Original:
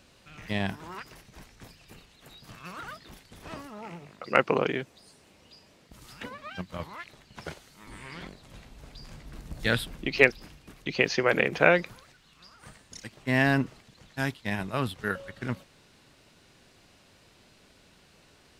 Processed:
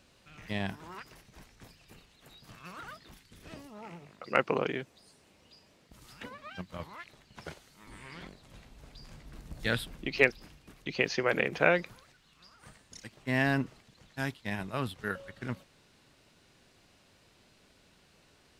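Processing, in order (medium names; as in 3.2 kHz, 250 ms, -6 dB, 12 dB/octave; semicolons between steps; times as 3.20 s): 3.11–3.74 s: peaking EQ 480 Hz -> 1.6 kHz -10.5 dB 0.89 oct; trim -4.5 dB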